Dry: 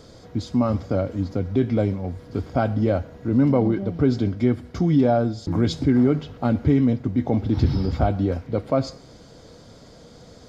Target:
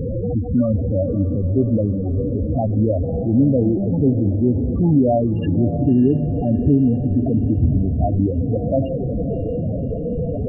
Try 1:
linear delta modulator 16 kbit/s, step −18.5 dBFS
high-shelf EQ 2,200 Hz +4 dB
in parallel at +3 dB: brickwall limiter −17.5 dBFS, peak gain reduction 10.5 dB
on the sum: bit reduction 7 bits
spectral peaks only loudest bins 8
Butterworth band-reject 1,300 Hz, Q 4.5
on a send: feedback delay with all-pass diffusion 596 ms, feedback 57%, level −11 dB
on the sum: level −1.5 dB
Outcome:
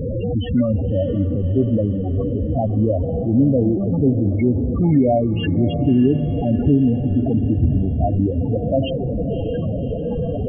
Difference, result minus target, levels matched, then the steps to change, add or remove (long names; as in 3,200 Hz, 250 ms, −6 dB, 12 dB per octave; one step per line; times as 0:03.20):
4,000 Hz band +16.5 dB
change: high-shelf EQ 2,200 Hz −6 dB